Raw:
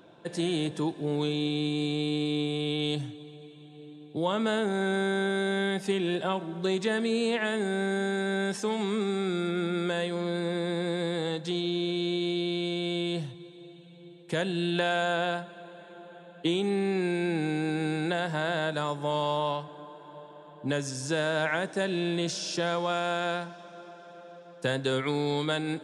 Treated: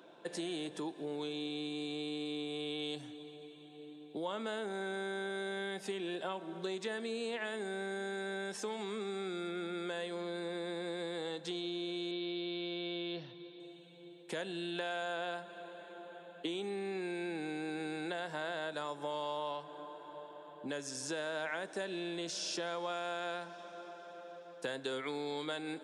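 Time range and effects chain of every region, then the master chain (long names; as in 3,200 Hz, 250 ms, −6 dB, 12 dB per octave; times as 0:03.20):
0:12.11–0:13.60: Butterworth low-pass 5,500 Hz 72 dB per octave + parametric band 790 Hz −3.5 dB 0.31 octaves
whole clip: downward compressor 3 to 1, threshold −34 dBFS; high-pass filter 280 Hz 12 dB per octave; level −2 dB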